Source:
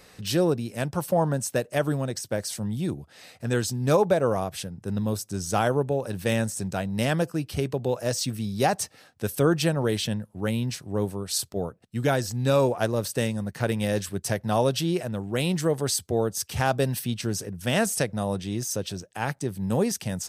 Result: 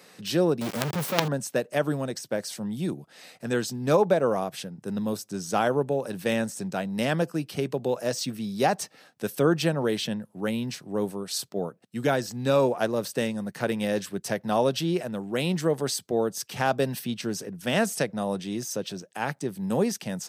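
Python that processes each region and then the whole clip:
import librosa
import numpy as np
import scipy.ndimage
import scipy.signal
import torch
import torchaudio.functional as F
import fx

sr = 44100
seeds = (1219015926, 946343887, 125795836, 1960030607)

y = fx.chain(x, sr, fx.low_shelf(hz=94.0, db=10.5),
    fx.quant_companded(bits=2), at=(0.61, 1.28))
y = scipy.signal.sosfilt(scipy.signal.butter(4, 150.0, 'highpass', fs=sr, output='sos'), y)
y = fx.dynamic_eq(y, sr, hz=9900.0, q=0.74, threshold_db=-47.0, ratio=4.0, max_db=-6)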